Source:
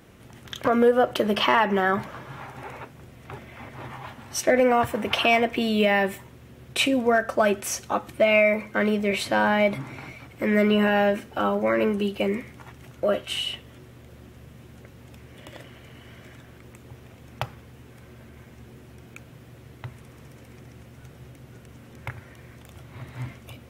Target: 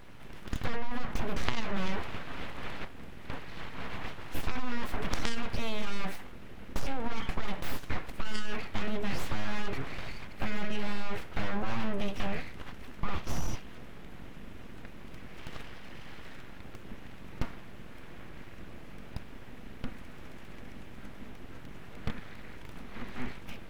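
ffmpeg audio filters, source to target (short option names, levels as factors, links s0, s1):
-filter_complex "[0:a]acrossover=split=1000[s0][s1];[s1]acontrast=47[s2];[s0][s2]amix=inputs=2:normalize=0,aeval=exprs='abs(val(0))':c=same,bass=f=250:g=6,treble=f=4000:g=-11,aeval=exprs='0.891*(cos(1*acos(clip(val(0)/0.891,-1,1)))-cos(1*PI/2))+0.0708*(cos(2*acos(clip(val(0)/0.891,-1,1)))-cos(2*PI/2))+0.224*(cos(4*acos(clip(val(0)/0.891,-1,1)))-cos(4*PI/2))':c=same,acompressor=threshold=0.0891:ratio=6"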